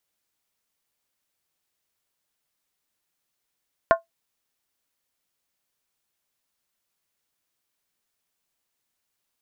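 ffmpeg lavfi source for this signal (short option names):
-f lavfi -i "aevalsrc='0.335*pow(10,-3*t/0.14)*sin(2*PI*667*t)+0.211*pow(10,-3*t/0.111)*sin(2*PI*1063.2*t)+0.133*pow(10,-3*t/0.096)*sin(2*PI*1424.7*t)+0.0841*pow(10,-3*t/0.092)*sin(2*PI*1531.4*t)+0.0531*pow(10,-3*t/0.086)*sin(2*PI*1769.6*t)':d=0.63:s=44100"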